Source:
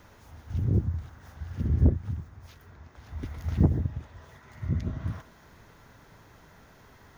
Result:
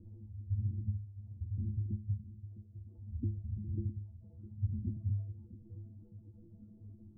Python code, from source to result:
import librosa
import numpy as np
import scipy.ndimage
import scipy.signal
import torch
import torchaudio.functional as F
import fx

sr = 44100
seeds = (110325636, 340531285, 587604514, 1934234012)

y = fx.spec_expand(x, sr, power=1.7)
y = fx.dereverb_blind(y, sr, rt60_s=1.5)
y = fx.over_compress(y, sr, threshold_db=-33.0, ratio=-1.0)
y = fx.ladder_lowpass(y, sr, hz=330.0, resonance_pct=45)
y = fx.stiff_resonator(y, sr, f0_hz=100.0, decay_s=0.49, stiffness=0.03)
y = y + 10.0 ** (-14.5 / 20.0) * np.pad(y, (int(658 * sr / 1000.0), 0))[:len(y)]
y = y * librosa.db_to_amplitude(18.0)